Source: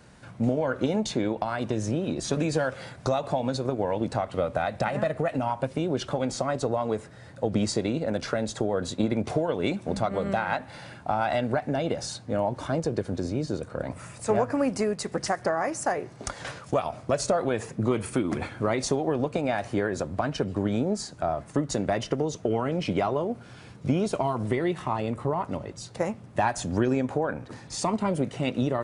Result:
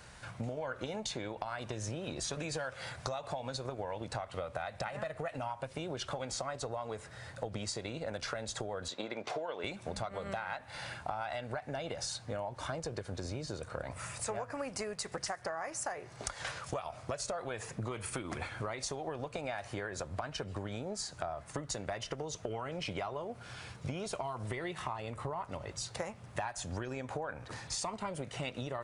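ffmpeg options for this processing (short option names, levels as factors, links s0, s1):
-filter_complex "[0:a]asettb=1/sr,asplit=3[s0][s1][s2];[s0]atrim=end=8.884[s3];[s1]atrim=start=8.88:end=9.64,asetpts=PTS-STARTPTS,afade=t=in:d=0.004:c=qsin,afade=t=out:st=0.756:d=0.004:c=qsin,highpass=300,lowpass=5400[s4];[s2]atrim=start=9.636[s5];[s3][s4]acrossfade=d=0.004:c1=hsin:c2=qsin[s6];[s6][s5]acrossfade=d=0.004:c1=qsin:c2=hsin,equalizer=f=250:t=o:w=2:g=-13,acompressor=threshold=0.0112:ratio=6,volume=1.5"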